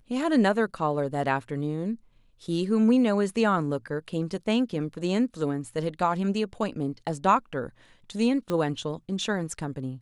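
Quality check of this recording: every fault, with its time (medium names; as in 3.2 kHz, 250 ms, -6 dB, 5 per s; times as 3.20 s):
8.50 s: pop -17 dBFS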